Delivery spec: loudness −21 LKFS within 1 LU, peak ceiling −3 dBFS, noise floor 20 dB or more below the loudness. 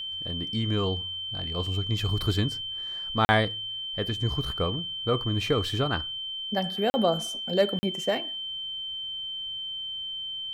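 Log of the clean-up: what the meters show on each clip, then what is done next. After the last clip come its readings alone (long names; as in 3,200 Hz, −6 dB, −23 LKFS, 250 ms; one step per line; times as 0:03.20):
number of dropouts 3; longest dropout 40 ms; interfering tone 3,100 Hz; level of the tone −32 dBFS; integrated loudness −28.0 LKFS; sample peak −8.0 dBFS; target loudness −21.0 LKFS
→ repair the gap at 0:03.25/0:06.90/0:07.79, 40 ms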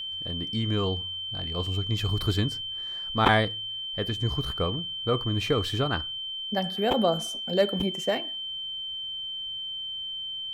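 number of dropouts 0; interfering tone 3,100 Hz; level of the tone −32 dBFS
→ notch filter 3,100 Hz, Q 30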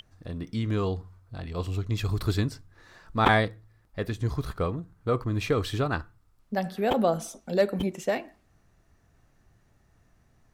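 interfering tone none found; integrated loudness −28.5 LKFS; sample peak −7.0 dBFS; target loudness −21.0 LKFS
→ level +7.5 dB
brickwall limiter −3 dBFS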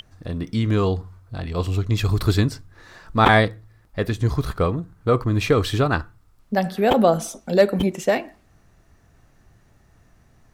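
integrated loudness −21.5 LKFS; sample peak −3.0 dBFS; background noise floor −57 dBFS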